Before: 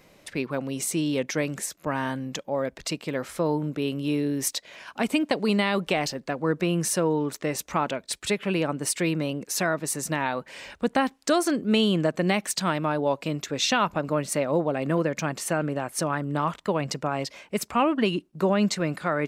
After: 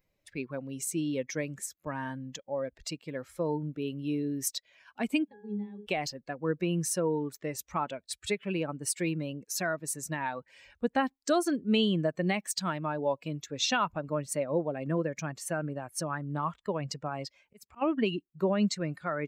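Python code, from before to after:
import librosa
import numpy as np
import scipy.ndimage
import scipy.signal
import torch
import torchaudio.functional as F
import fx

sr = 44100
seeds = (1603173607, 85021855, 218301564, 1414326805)

y = fx.bin_expand(x, sr, power=1.5)
y = fx.octave_resonator(y, sr, note='G#', decay_s=0.45, at=(5.27, 5.85), fade=0.02)
y = fx.auto_swell(y, sr, attack_ms=457.0, at=(17.29, 17.81), fade=0.02)
y = y * librosa.db_to_amplitude(-2.5)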